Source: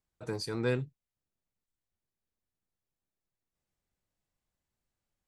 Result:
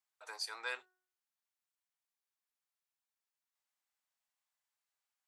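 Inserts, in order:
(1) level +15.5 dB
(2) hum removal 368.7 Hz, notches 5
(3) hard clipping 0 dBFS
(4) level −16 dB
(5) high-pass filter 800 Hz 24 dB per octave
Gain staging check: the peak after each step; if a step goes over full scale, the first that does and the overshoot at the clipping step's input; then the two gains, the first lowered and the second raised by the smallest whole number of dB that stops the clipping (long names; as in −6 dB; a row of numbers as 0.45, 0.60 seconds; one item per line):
−3.0, −3.5, −3.5, −19.5, −25.0 dBFS
no step passes full scale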